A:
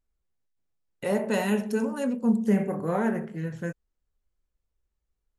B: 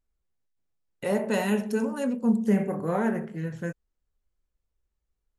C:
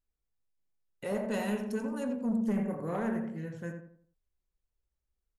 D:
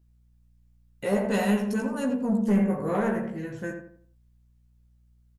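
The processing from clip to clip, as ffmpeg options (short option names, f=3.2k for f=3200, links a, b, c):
-af anull
-filter_complex "[0:a]asoftclip=type=tanh:threshold=-18.5dB,asplit=2[a][b];[b]adelay=84,lowpass=f=1.6k:p=1,volume=-5dB,asplit=2[c][d];[d]adelay=84,lowpass=f=1.6k:p=1,volume=0.39,asplit=2[e][f];[f]adelay=84,lowpass=f=1.6k:p=1,volume=0.39,asplit=2[g][h];[h]adelay=84,lowpass=f=1.6k:p=1,volume=0.39,asplit=2[i][j];[j]adelay=84,lowpass=f=1.6k:p=1,volume=0.39[k];[c][e][g][i][k]amix=inputs=5:normalize=0[l];[a][l]amix=inputs=2:normalize=0,volume=-6.5dB"
-filter_complex "[0:a]aeval=exprs='val(0)+0.000355*(sin(2*PI*60*n/s)+sin(2*PI*2*60*n/s)/2+sin(2*PI*3*60*n/s)/3+sin(2*PI*4*60*n/s)/4+sin(2*PI*5*60*n/s)/5)':c=same,asplit=2[a][b];[b]adelay=15,volume=-3dB[c];[a][c]amix=inputs=2:normalize=0,volume=6dB"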